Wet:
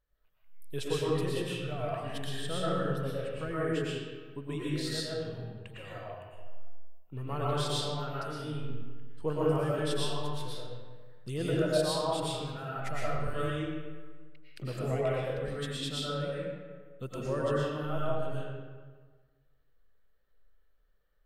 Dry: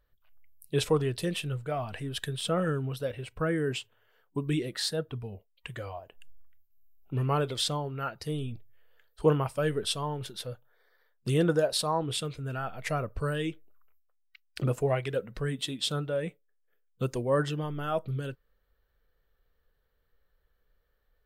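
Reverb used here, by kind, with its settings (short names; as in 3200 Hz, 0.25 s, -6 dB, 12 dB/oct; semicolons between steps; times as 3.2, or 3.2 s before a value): digital reverb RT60 1.5 s, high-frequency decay 0.65×, pre-delay 75 ms, DRR -7 dB; gain -10 dB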